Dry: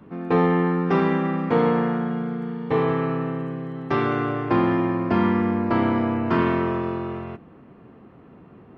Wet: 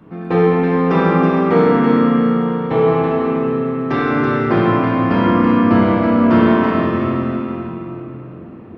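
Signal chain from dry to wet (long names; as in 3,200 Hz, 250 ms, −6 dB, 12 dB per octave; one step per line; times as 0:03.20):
feedback echo with a high-pass in the loop 327 ms, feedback 34%, high-pass 790 Hz, level −4.5 dB
rectangular room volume 180 cubic metres, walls hard, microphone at 0.62 metres
level +2 dB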